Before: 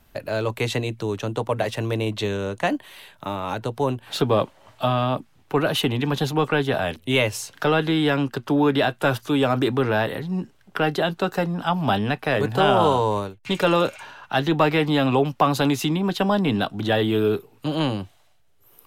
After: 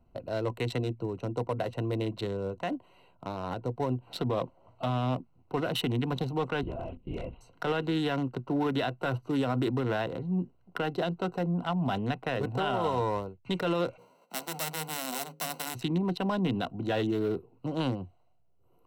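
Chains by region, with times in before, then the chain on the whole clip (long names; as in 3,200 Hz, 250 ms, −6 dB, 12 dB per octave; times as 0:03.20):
0:06.63–0:07.41: downward compressor 3 to 1, threshold −27 dBFS + linear-prediction vocoder at 8 kHz whisper
0:13.97–0:15.74: spectral envelope flattened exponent 0.1 + Chebyshev high-pass with heavy ripple 150 Hz, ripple 6 dB + mains-hum notches 60/120/180/240/300/360/420/480/540 Hz
whole clip: adaptive Wiener filter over 25 samples; EQ curve with evenly spaced ripples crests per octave 2, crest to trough 7 dB; brickwall limiter −15 dBFS; level −5.5 dB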